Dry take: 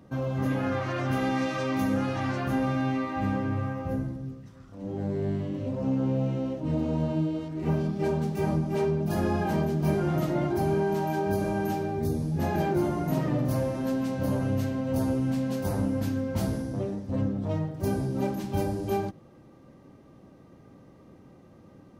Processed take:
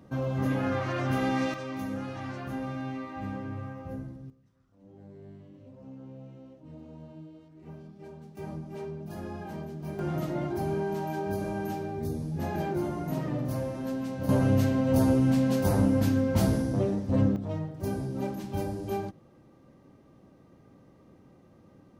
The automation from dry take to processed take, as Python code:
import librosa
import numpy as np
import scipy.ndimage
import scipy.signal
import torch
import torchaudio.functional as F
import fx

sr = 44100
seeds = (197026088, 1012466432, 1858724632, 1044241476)

y = fx.gain(x, sr, db=fx.steps((0.0, -0.5), (1.54, -8.0), (4.3, -19.0), (8.37, -12.0), (9.99, -4.5), (14.29, 4.0), (17.36, -4.0)))